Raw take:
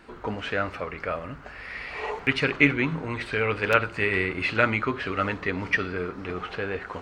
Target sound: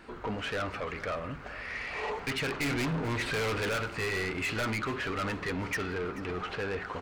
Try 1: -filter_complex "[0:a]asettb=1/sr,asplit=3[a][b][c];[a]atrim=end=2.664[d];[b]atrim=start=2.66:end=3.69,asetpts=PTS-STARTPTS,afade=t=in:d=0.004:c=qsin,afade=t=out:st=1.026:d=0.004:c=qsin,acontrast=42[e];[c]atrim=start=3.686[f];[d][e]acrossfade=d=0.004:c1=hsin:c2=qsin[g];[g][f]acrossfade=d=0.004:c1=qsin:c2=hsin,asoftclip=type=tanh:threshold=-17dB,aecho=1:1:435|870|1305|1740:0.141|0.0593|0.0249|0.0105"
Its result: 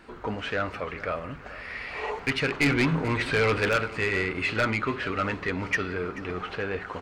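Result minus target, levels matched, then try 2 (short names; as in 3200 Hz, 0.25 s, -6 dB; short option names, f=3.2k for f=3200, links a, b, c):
soft clip: distortion -7 dB
-filter_complex "[0:a]asettb=1/sr,asplit=3[a][b][c];[a]atrim=end=2.664[d];[b]atrim=start=2.66:end=3.69,asetpts=PTS-STARTPTS,afade=t=in:d=0.004:c=qsin,afade=t=out:st=1.026:d=0.004:c=qsin,acontrast=42[e];[c]atrim=start=3.686[f];[d][e]acrossfade=d=0.004:c1=hsin:c2=qsin[g];[g][f]acrossfade=d=0.004:c1=qsin:c2=hsin,asoftclip=type=tanh:threshold=-28.5dB,aecho=1:1:435|870|1305|1740:0.141|0.0593|0.0249|0.0105"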